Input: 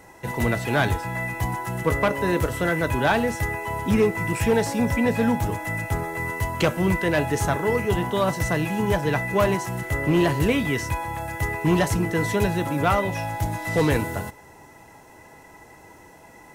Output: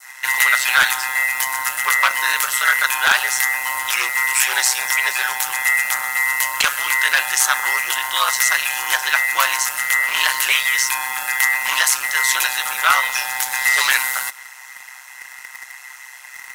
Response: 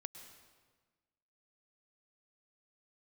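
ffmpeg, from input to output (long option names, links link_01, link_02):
-filter_complex "[0:a]highpass=frequency=1400:width=0.5412,highpass=frequency=1400:width=1.3066,asplit=2[link_01][link_02];[1:a]atrim=start_sample=2205[link_03];[link_02][link_03]afir=irnorm=-1:irlink=0,volume=-7.5dB[link_04];[link_01][link_04]amix=inputs=2:normalize=0,aeval=exprs='0.168*(abs(mod(val(0)/0.168+3,4)-2)-1)':channel_layout=same,adynamicequalizer=threshold=0.00794:dfrequency=2200:dqfactor=1:tfrequency=2200:tqfactor=1:attack=5:release=100:ratio=0.375:range=3.5:mode=cutabove:tftype=bell,asplit=2[link_05][link_06];[link_06]acrusher=bits=6:mix=0:aa=0.000001,volume=-7.5dB[link_07];[link_05][link_07]amix=inputs=2:normalize=0,aeval=exprs='val(0)*sin(2*PI*65*n/s)':channel_layout=same,alimiter=level_in=17.5dB:limit=-1dB:release=50:level=0:latency=1,volume=-1dB"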